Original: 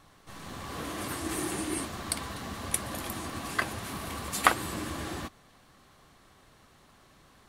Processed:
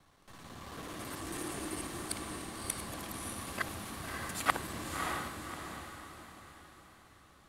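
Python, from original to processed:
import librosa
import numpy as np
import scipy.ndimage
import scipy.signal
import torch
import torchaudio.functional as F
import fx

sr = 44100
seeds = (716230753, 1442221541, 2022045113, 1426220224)

y = fx.local_reverse(x, sr, ms=55.0)
y = fx.echo_diffused(y, sr, ms=598, feedback_pct=42, wet_db=-3.5)
y = F.gain(torch.from_numpy(y), -7.0).numpy()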